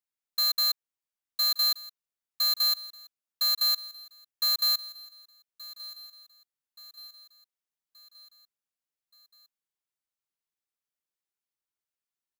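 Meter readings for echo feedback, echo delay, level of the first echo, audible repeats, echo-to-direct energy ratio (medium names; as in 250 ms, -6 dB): 52%, 1176 ms, -18.5 dB, 3, -17.0 dB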